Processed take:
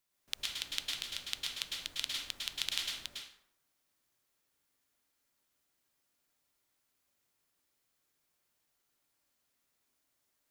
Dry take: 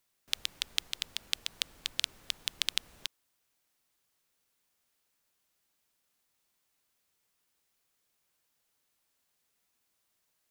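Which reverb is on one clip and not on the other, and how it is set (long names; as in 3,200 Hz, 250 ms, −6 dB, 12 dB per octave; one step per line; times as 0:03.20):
dense smooth reverb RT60 0.71 s, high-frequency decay 0.6×, pre-delay 95 ms, DRR −3 dB
level −6 dB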